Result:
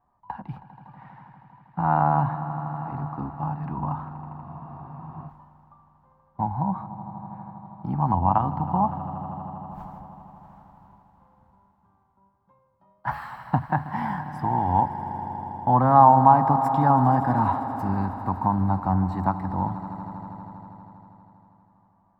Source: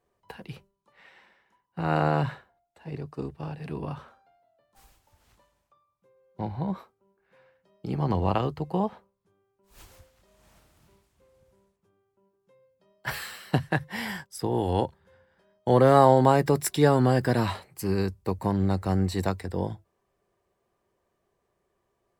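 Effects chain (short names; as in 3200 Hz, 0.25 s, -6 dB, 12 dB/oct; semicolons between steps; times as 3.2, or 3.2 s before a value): vibrato 1.3 Hz 18 cents; in parallel at +0.5 dB: compressor, threshold -31 dBFS, peak gain reduction 18 dB; on the sum: EQ curve 270 Hz 0 dB, 440 Hz -19 dB, 870 Hz +11 dB, 2500 Hz -17 dB, 9600 Hz -28 dB, 15000 Hz -21 dB; on a send: swelling echo 80 ms, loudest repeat 5, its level -17 dB; on the sum: spectral freeze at 4.46, 0.82 s; gain -1 dB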